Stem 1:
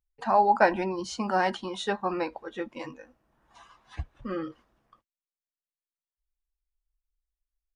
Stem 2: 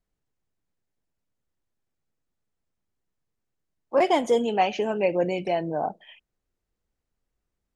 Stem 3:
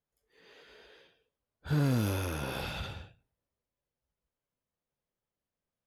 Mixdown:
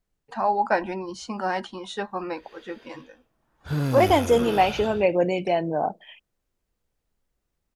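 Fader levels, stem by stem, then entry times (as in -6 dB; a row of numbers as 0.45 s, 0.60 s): -1.5 dB, +2.5 dB, +2.5 dB; 0.10 s, 0.00 s, 2.00 s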